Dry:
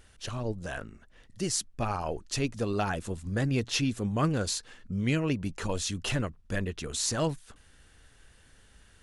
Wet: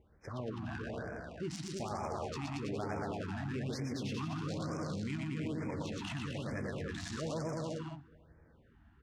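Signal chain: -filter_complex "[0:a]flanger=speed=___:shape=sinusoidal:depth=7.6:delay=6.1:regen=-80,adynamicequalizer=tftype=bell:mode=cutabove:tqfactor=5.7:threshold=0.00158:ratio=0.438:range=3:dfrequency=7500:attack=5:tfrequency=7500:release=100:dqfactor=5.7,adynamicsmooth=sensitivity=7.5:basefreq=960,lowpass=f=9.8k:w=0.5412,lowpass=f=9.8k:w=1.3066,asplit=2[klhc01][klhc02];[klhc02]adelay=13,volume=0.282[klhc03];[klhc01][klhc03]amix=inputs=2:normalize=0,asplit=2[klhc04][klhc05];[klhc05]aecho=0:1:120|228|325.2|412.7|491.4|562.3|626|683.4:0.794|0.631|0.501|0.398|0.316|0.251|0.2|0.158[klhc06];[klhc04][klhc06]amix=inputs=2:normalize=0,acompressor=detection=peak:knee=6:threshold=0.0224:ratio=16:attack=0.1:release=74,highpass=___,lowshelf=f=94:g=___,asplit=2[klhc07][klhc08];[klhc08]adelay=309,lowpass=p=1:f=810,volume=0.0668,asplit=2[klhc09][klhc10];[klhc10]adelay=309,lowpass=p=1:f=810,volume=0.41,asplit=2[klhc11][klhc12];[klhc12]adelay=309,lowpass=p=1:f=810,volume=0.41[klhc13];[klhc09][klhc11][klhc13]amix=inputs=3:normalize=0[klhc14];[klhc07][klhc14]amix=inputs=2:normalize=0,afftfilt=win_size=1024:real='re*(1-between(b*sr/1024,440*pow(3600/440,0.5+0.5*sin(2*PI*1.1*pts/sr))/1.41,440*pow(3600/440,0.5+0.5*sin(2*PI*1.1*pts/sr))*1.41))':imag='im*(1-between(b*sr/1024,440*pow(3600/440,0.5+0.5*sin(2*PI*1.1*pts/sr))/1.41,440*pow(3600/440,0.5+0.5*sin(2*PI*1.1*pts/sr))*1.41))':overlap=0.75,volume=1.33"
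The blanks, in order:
0.39, 48, -5.5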